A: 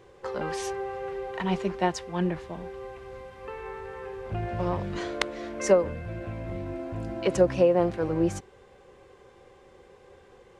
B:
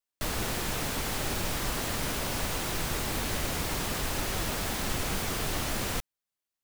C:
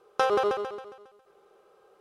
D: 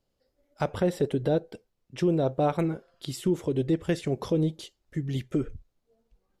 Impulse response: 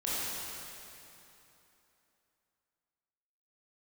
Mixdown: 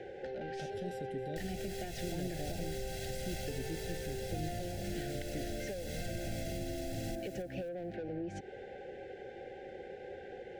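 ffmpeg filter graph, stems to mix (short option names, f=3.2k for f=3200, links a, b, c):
-filter_complex "[0:a]highshelf=f=4k:g=-8,acompressor=threshold=-30dB:ratio=2.5,asplit=2[a][b];[b]highpass=f=720:p=1,volume=19dB,asoftclip=type=tanh:threshold=-18.5dB[c];[a][c]amix=inputs=2:normalize=0,lowpass=f=1.4k:p=1,volume=-6dB,volume=2.5dB[d];[1:a]aecho=1:1:1.5:0.75,alimiter=limit=-21.5dB:level=0:latency=1:release=135,adelay=1150,volume=-2dB,asplit=2[e][f];[f]volume=-21dB[g];[2:a]adelay=400,volume=-3.5dB[h];[3:a]volume=-14.5dB,asplit=2[i][j];[j]volume=-16.5dB[k];[d][e][h]amix=inputs=3:normalize=0,highshelf=f=8.4k:g=-8.5,acompressor=threshold=-33dB:ratio=6,volume=0dB[l];[g][k]amix=inputs=2:normalize=0,aecho=0:1:268|536|804|1072:1|0.27|0.0729|0.0197[m];[i][l][m]amix=inputs=3:normalize=0,acrossover=split=280|3000[n][o][p];[o]acompressor=threshold=-47dB:ratio=2[q];[n][q][p]amix=inputs=3:normalize=0,asuperstop=centerf=1100:order=12:qfactor=1.7"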